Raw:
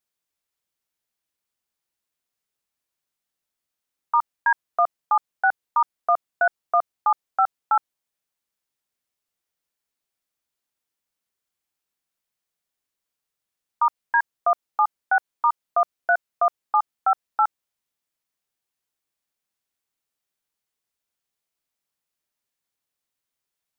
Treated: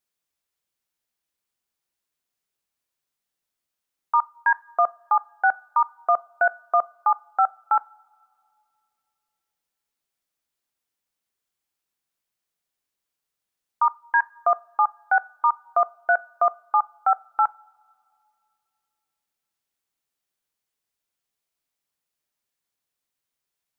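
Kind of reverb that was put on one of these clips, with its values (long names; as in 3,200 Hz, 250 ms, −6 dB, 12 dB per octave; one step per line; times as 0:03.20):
coupled-rooms reverb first 0.3 s, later 2.5 s, from −21 dB, DRR 17.5 dB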